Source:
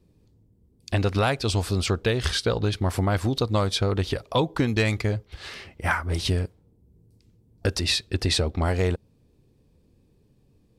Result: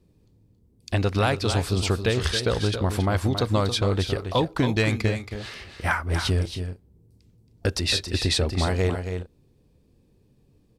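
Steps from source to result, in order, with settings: multi-tap echo 274/307 ms -8.5/-17.5 dB

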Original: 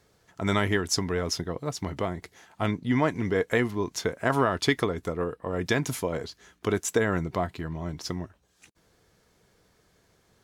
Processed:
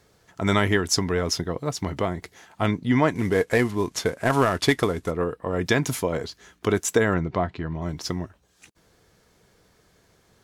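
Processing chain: 3.15–5.11 s: CVSD coder 64 kbps; 7.14–7.82 s: distance through air 150 m; trim +4 dB

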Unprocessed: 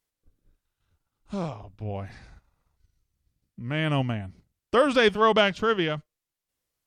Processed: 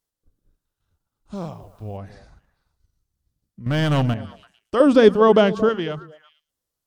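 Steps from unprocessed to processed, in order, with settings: peaking EQ 2.3 kHz -7 dB 0.81 oct; 3.66–4.14 s: waveshaping leveller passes 3; 4.80–5.69 s: peaking EQ 300 Hz +11.5 dB 2.2 oct; repeats whose band climbs or falls 112 ms, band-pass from 190 Hz, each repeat 1.4 oct, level -11.5 dB; 1.34–1.96 s: added noise white -68 dBFS

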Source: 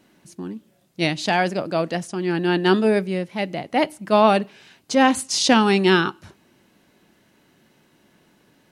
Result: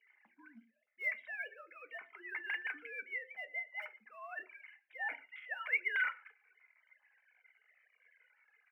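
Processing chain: formants replaced by sine waves; tilt EQ -1.5 dB/octave; comb 1.3 ms, depth 42%; reverse; compression 6:1, threshold -29 dBFS, peak gain reduction 19 dB; reverse; band-pass filter 2.1 kHz, Q 12; in parallel at -6.5 dB: short-mantissa float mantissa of 2-bit; on the sum: delay 117 ms -24 dB; reverberation RT60 0.25 s, pre-delay 3 ms, DRR 6.5 dB; Shepard-style flanger falling 0.44 Hz; trim +1 dB

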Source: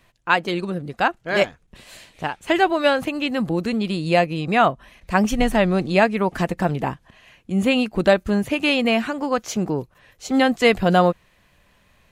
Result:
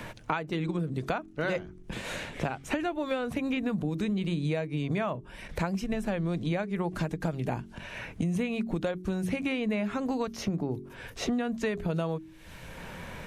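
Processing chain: bass shelf 420 Hz +7 dB; hum notches 50/100/150/200/250/300/350/400/450 Hz; compression 5:1, threshold -29 dBFS, peak gain reduction 19 dB; wide varispeed 0.913×; three bands compressed up and down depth 70%

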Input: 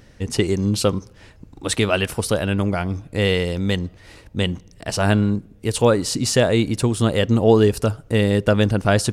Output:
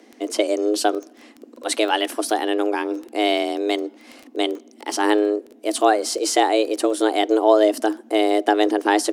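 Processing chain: frequency shift +210 Hz; crackle 11 per s -27 dBFS; trim -1 dB

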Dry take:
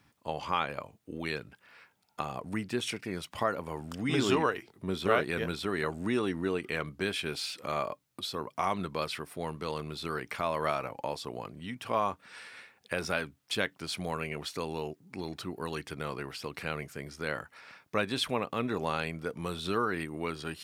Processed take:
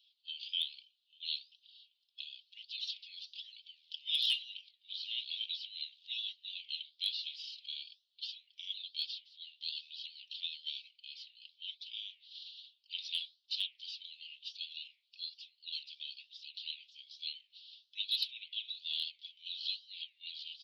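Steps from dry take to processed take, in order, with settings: coarse spectral quantiser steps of 15 dB; steep low-pass 4.2 kHz 48 dB/octave; spectral gate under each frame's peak -15 dB weak; steep high-pass 3 kHz 72 dB/octave; comb 3.9 ms, depth 58%; hard clipper -33.5 dBFS, distortion -25 dB; flange 1.1 Hz, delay 6 ms, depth 9.3 ms, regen -78%; trim +14.5 dB

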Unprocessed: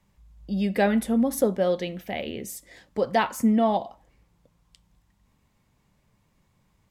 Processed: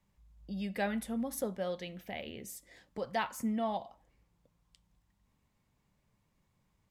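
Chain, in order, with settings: dynamic bell 350 Hz, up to -7 dB, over -36 dBFS, Q 0.79; trim -8.5 dB

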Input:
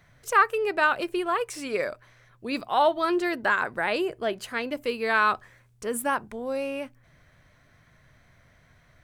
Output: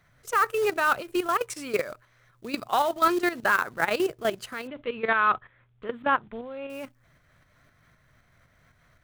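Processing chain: level held to a coarse grid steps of 13 dB; dynamic bell 130 Hz, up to +6 dB, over -57 dBFS, Q 2.6; tremolo saw up 3.9 Hz, depth 45%; peaking EQ 1.3 kHz +5 dB 0.33 oct; short-mantissa float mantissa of 2-bit; 4.67–6.70 s: elliptic low-pass 3.5 kHz, stop band 40 dB; trim +5 dB

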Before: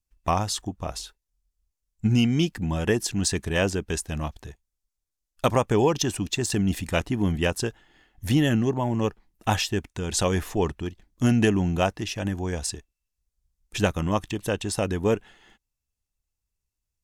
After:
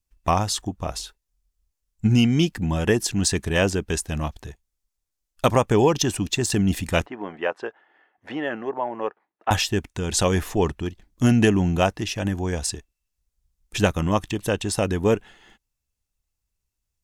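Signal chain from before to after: 7.06–9.51 s: Butterworth band-pass 940 Hz, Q 0.65; trim +3 dB

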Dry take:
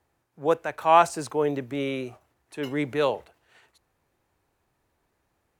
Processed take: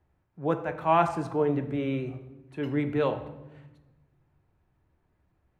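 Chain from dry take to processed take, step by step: tone controls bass +11 dB, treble -14 dB; on a send: reverberation RT60 1.1 s, pre-delay 3 ms, DRR 6.5 dB; on the sum: trim -4.5 dB

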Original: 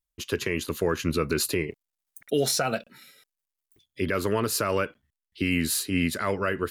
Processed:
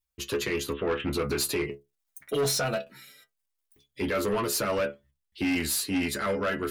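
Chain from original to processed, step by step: 0.72–1.13 s: steep low-pass 3.5 kHz 96 dB/octave; inharmonic resonator 68 Hz, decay 0.23 s, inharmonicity 0.002; saturation -30 dBFS, distortion -11 dB; trim +8 dB

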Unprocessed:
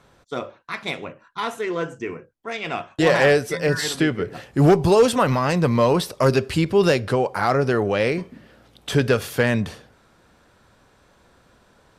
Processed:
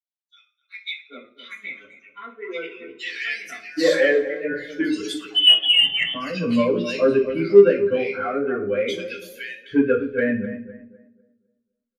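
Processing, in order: expander on every frequency bin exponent 2; static phaser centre 360 Hz, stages 4; bands offset in time highs, lows 780 ms, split 2.2 kHz; 5.30–6.14 s: frequency inversion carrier 3.3 kHz; on a send: tape echo 253 ms, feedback 36%, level -10.5 dB, low-pass 1.3 kHz; on the sum: reverberation RT60 0.45 s, pre-delay 3 ms, DRR -12.5 dB; in parallel at -11 dB: saturation -5.5 dBFS, distortion -8 dB; on the sum: trim -11 dB

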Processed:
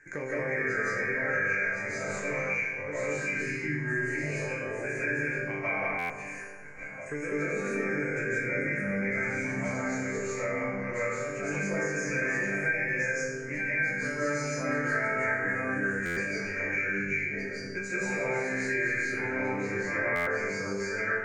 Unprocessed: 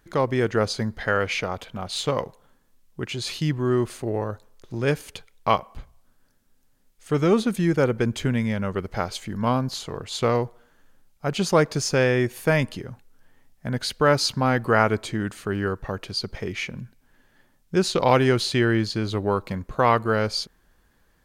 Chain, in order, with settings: chunks repeated in reverse 622 ms, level -0.5 dB; FFT filter 520 Hz 0 dB, 880 Hz -19 dB, 1.5 kHz +1 dB, 2.3 kHz +13 dB, 3.3 kHz -28 dB, 6.9 kHz +5 dB, 13 kHz -29 dB; phaser 0.35 Hz, delay 2 ms, feedback 21%; chord resonator G2 sus4, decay 0.65 s; peak limiter -31 dBFS, peak gain reduction 11.5 dB; bass shelf 180 Hz -10.5 dB; small resonant body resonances 890/1600 Hz, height 14 dB, ringing for 30 ms; reverberation RT60 1.2 s, pre-delay 124 ms, DRR -10.5 dB; buffer glitch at 5.98/16.05/20.15 s, samples 512, times 9; three bands compressed up and down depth 70%; trim -1 dB

